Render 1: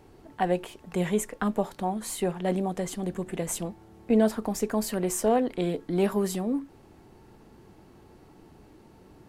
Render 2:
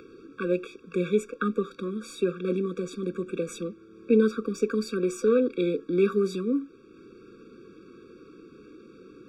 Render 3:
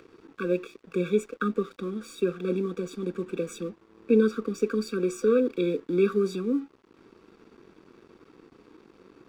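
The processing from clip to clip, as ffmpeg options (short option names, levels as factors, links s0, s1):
-filter_complex "[0:a]acrossover=split=210 5700:gain=0.112 1 0.0708[s0][s1][s2];[s0][s1][s2]amix=inputs=3:normalize=0,acompressor=mode=upward:threshold=0.00501:ratio=2.5,afftfilt=real='re*eq(mod(floor(b*sr/1024/550),2),0)':imag='im*eq(mod(floor(b*sr/1024/550),2),0)':win_size=1024:overlap=0.75,volume=1.68"
-af "aeval=exprs='sgn(val(0))*max(abs(val(0))-0.00224,0)':c=same"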